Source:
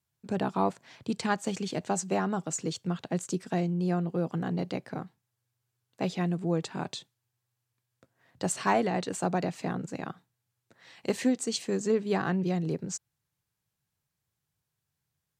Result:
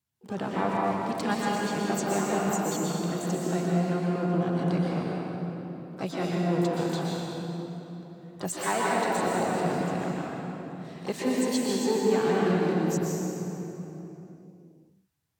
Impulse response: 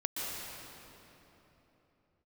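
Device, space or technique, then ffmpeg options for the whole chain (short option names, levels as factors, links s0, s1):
shimmer-style reverb: -filter_complex "[0:a]asplit=2[s0][s1];[s1]asetrate=88200,aresample=44100,atempo=0.5,volume=0.282[s2];[s0][s2]amix=inputs=2:normalize=0[s3];[1:a]atrim=start_sample=2205[s4];[s3][s4]afir=irnorm=-1:irlink=0,asettb=1/sr,asplit=3[s5][s6][s7];[s5]atrim=end=8.534[s8];[s6]atrim=start=8.53:end=9.19,asetpts=PTS-STARTPTS,afade=t=in:d=0.004:c=qsin,afade=t=out:st=0.656:d=0.004:c=qsin,lowshelf=f=250:g=-8[s9];[s7]atrim=start=9.186[s10];[s8][s9]acrossfade=d=0.004:c1=hsin:c2=qsin[s11];[s11][s10]acrossfade=d=0.004:c1=qsin:c2=hsin,volume=0.794"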